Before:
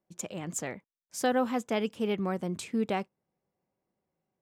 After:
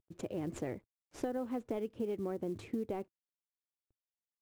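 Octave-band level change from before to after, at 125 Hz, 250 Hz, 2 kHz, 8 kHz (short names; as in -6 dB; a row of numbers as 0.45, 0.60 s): -7.0, -7.0, -16.0, -18.0 dB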